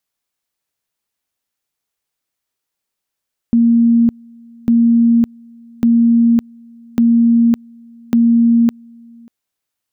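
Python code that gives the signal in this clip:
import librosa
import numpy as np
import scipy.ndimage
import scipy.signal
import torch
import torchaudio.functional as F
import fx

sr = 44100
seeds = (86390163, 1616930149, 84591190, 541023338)

y = fx.two_level_tone(sr, hz=233.0, level_db=-7.5, drop_db=29.5, high_s=0.56, low_s=0.59, rounds=5)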